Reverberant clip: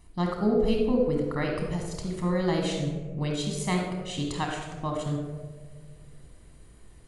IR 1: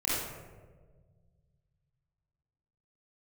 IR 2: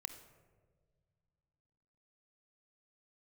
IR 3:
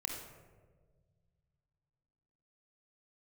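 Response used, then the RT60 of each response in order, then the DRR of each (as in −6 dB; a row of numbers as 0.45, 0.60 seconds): 3; 1.5 s, non-exponential decay, 1.5 s; −9.0, 8.0, 0.5 decibels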